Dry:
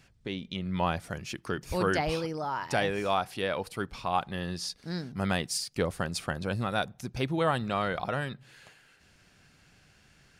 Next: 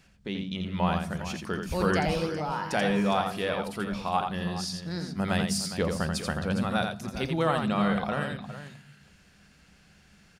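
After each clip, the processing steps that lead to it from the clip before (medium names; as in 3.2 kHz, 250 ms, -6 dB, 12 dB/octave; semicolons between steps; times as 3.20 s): multi-tap echo 85/410 ms -5.5/-12.5 dB; on a send at -16.5 dB: reverberation RT60 1.1 s, pre-delay 3 ms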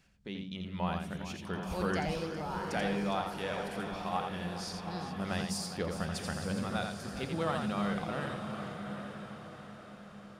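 echo that smears into a reverb 833 ms, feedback 46%, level -7 dB; trim -7.5 dB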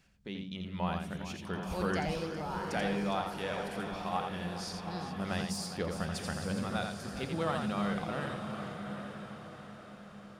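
de-esser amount 75%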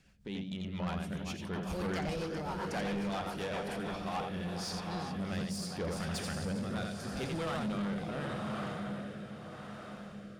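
rotary cabinet horn 7.5 Hz, later 0.8 Hz, at 3.51 s; saturation -35.5 dBFS, distortion -10 dB; trim +4.5 dB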